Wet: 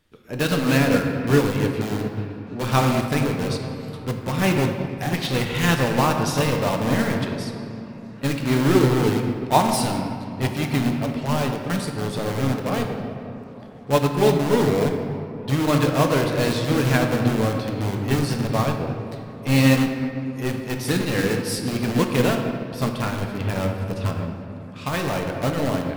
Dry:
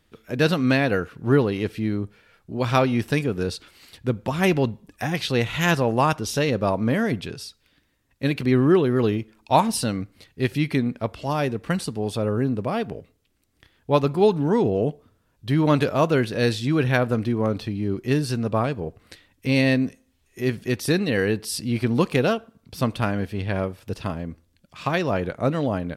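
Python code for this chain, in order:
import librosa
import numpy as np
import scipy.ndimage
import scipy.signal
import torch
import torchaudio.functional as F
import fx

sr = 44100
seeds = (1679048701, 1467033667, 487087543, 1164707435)

p1 = fx.dynamic_eq(x, sr, hz=370.0, q=3.6, threshold_db=-35.0, ratio=4.0, max_db=-3)
p2 = (np.mod(10.0 ** (19.5 / 20.0) * p1 + 1.0, 2.0) - 1.0) / 10.0 ** (19.5 / 20.0)
p3 = p1 + (p2 * librosa.db_to_amplitude(-5.0))
p4 = fx.echo_stepped(p3, sr, ms=296, hz=280.0, octaves=0.7, feedback_pct=70, wet_db=-11.0)
p5 = fx.room_shoebox(p4, sr, seeds[0], volume_m3=150.0, walls='hard', distance_m=0.37)
y = fx.upward_expand(p5, sr, threshold_db=-25.0, expansion=1.5)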